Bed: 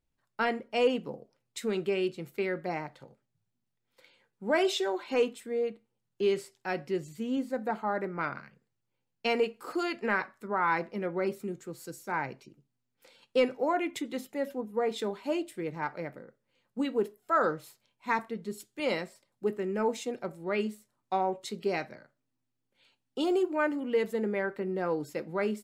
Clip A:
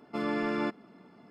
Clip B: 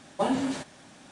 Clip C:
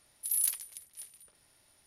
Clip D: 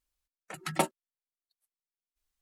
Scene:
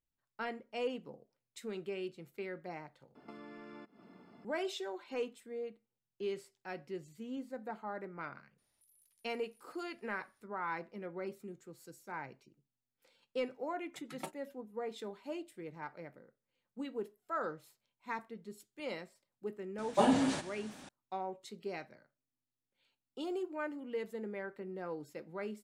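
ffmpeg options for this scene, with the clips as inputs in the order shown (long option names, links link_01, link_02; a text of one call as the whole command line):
ffmpeg -i bed.wav -i cue0.wav -i cue1.wav -i cue2.wav -i cue3.wav -filter_complex "[0:a]volume=-11dB[link_01];[1:a]acompressor=threshold=-45dB:ratio=8:attack=8.9:release=270:knee=1:detection=peak[link_02];[3:a]acompressor=threshold=-56dB:ratio=6:attack=3.2:release=140:knee=1:detection=peak[link_03];[2:a]aecho=1:1:106:0.141[link_04];[link_01]asplit=2[link_05][link_06];[link_05]atrim=end=3.154[link_07];[link_02]atrim=end=1.3,asetpts=PTS-STARTPTS,volume=-3.5dB[link_08];[link_06]atrim=start=4.446[link_09];[link_03]atrim=end=1.86,asetpts=PTS-STARTPTS,volume=-13.5dB,afade=type=in:duration=0.004:curve=hsin,afade=type=out:start_time=1.856:duration=0.004:curve=hsin,adelay=378378S[link_10];[4:a]atrim=end=2.41,asetpts=PTS-STARTPTS,volume=-16.5dB,afade=type=in:duration=0.004:curve=hsin,afade=type=out:start_time=2.406:duration=0.004:curve=hsin,adelay=13440[link_11];[link_04]atrim=end=1.11,asetpts=PTS-STARTPTS,volume=-1dB,afade=type=in:duration=0.004:curve=hsin,afade=type=out:start_time=1.106:duration=0.004:curve=hsin,adelay=19780[link_12];[link_07][link_08]acrossfade=duration=0.004:curve1=hsin:curve2=hsin[link_13];[link_13][link_09]acrossfade=duration=0.004:curve1=hsin:curve2=hsin[link_14];[link_14][link_10][link_11][link_12]amix=inputs=4:normalize=0" out.wav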